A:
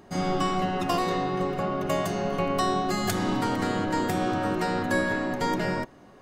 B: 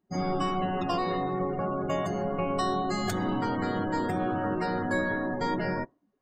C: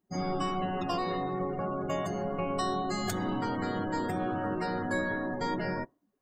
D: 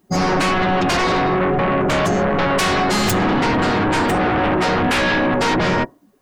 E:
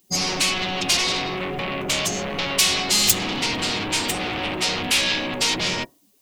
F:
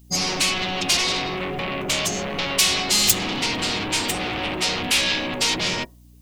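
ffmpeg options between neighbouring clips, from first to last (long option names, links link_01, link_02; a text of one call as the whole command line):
ffmpeg -i in.wav -filter_complex "[0:a]afftdn=noise_reduction=30:noise_floor=-35,asplit=2[link_01][link_02];[link_02]alimiter=level_in=0.5dB:limit=-24dB:level=0:latency=1,volume=-0.5dB,volume=-3dB[link_03];[link_01][link_03]amix=inputs=2:normalize=0,volume=-5dB" out.wav
ffmpeg -i in.wav -af "highshelf=frequency=6500:gain=6.5,volume=-3dB" out.wav
ffmpeg -i in.wav -af "aeval=exprs='0.119*sin(PI/2*3.98*val(0)/0.119)':channel_layout=same,volume=4.5dB" out.wav
ffmpeg -i in.wav -af "aexciter=amount=7.7:drive=3.1:freq=2300,volume=-11dB" out.wav
ffmpeg -i in.wav -af "aeval=exprs='val(0)+0.00398*(sin(2*PI*60*n/s)+sin(2*PI*2*60*n/s)/2+sin(2*PI*3*60*n/s)/3+sin(2*PI*4*60*n/s)/4+sin(2*PI*5*60*n/s)/5)':channel_layout=same" out.wav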